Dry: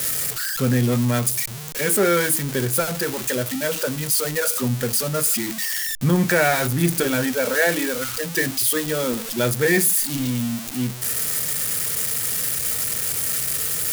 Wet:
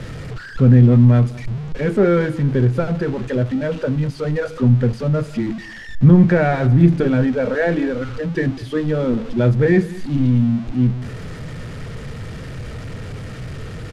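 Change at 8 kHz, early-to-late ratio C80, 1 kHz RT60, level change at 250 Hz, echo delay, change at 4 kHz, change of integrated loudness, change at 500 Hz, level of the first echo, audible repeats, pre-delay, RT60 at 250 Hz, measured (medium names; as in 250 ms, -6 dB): under -25 dB, no reverb, no reverb, +7.5 dB, 200 ms, -12.0 dB, +3.5 dB, +3.5 dB, -20.0 dB, 1, no reverb, no reverb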